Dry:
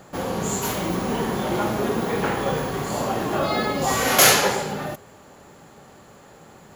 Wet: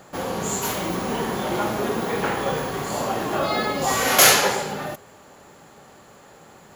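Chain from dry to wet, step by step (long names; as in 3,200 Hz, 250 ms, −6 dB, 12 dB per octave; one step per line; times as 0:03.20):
low-shelf EQ 330 Hz −5 dB
level +1 dB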